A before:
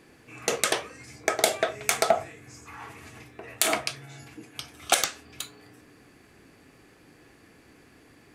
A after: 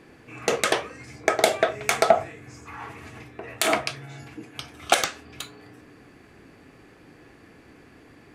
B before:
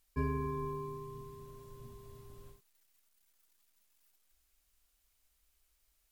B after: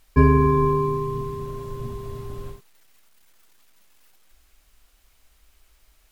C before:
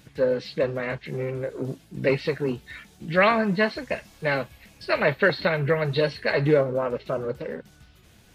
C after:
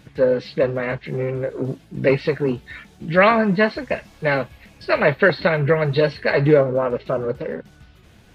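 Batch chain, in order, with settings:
high-shelf EQ 4,500 Hz −10 dB
normalise the peak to −3 dBFS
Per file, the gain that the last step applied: +5.0, +19.5, +5.5 decibels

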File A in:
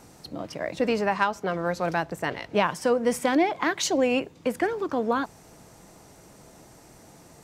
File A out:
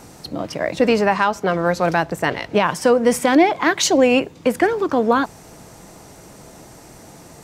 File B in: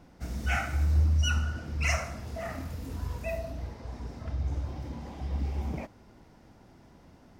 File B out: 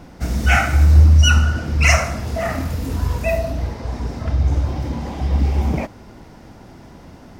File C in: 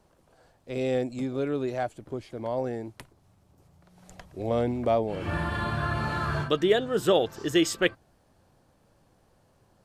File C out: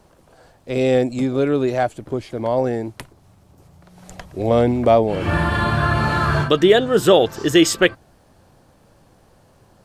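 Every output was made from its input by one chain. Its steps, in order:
boost into a limiter +12 dB
loudness normalisation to −18 LKFS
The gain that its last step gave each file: −3.5, +2.0, −1.5 decibels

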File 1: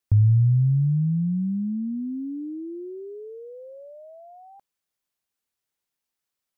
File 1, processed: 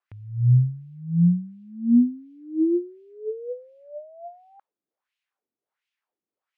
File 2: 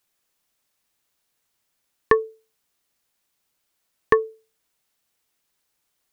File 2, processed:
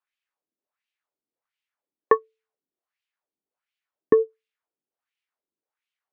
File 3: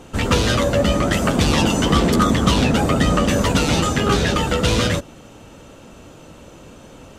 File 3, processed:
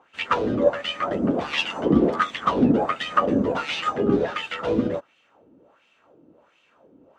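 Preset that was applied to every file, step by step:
high-shelf EQ 5,900 Hz −5 dB
auto-filter band-pass sine 1.4 Hz 280–2,800 Hz
expander for the loud parts 1.5 to 1, over −44 dBFS
loudness normalisation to −23 LKFS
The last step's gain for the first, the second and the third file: +17.5, +9.0, +6.5 decibels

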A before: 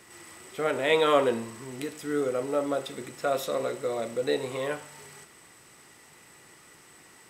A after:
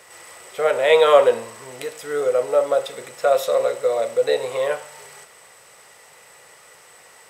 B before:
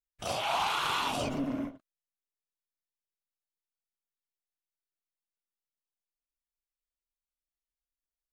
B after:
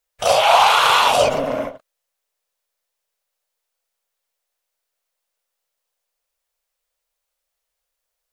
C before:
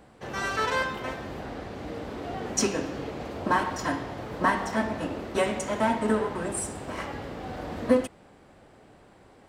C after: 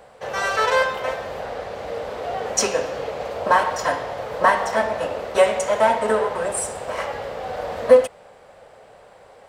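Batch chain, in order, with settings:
low shelf with overshoot 400 Hz −8 dB, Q 3
normalise the peak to −1.5 dBFS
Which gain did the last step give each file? +5.5, +15.5, +6.0 decibels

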